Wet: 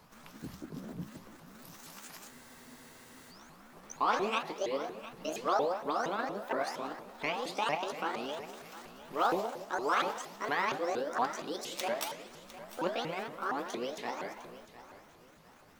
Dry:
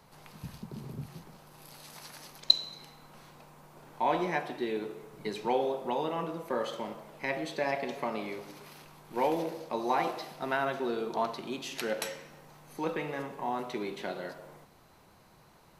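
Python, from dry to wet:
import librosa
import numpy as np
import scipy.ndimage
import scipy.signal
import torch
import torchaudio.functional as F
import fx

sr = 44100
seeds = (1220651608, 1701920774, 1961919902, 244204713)

y = fx.pitch_ramps(x, sr, semitones=9.5, every_ms=233)
y = fx.echo_feedback(y, sr, ms=704, feedback_pct=32, wet_db=-15.5)
y = fx.spec_freeze(y, sr, seeds[0], at_s=2.32, hold_s=1.0)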